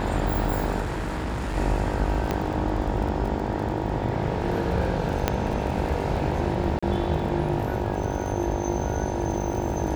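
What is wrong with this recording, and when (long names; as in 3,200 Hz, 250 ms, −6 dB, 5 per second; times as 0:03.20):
mains buzz 50 Hz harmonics 19 −30 dBFS
surface crackle 30 per second −32 dBFS
0:00.81–0:01.57: clipping −25 dBFS
0:02.31: click −11 dBFS
0:05.28: click −6 dBFS
0:06.79–0:06.83: drop-out 35 ms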